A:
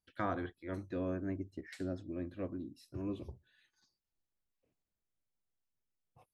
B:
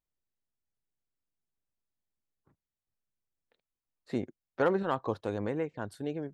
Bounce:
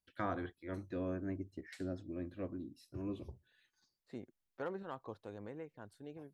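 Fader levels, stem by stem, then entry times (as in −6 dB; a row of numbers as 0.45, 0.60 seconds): −2.0, −14.5 decibels; 0.00, 0.00 seconds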